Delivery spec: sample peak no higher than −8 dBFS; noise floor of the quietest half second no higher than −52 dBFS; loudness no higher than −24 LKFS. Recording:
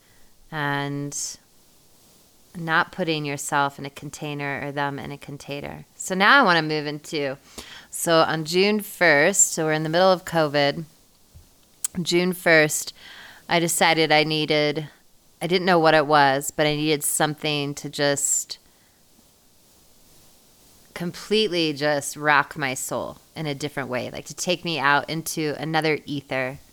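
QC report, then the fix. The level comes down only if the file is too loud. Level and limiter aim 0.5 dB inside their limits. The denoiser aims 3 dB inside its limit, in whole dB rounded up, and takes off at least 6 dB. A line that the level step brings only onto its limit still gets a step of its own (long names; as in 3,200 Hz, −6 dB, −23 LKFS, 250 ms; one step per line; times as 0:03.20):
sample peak −3.5 dBFS: out of spec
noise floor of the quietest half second −57 dBFS: in spec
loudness −21.5 LKFS: out of spec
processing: level −3 dB
brickwall limiter −8.5 dBFS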